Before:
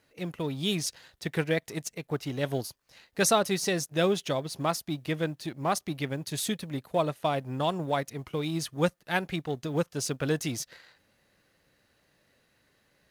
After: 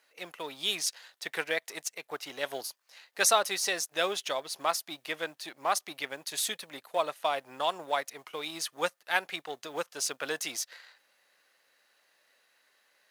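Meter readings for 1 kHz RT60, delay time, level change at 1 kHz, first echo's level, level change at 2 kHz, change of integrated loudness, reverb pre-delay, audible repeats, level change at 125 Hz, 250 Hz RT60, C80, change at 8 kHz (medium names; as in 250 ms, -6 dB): no reverb, no echo, 0.0 dB, no echo, +2.0 dB, -2.0 dB, no reverb, no echo, -24.5 dB, no reverb, no reverb, +2.0 dB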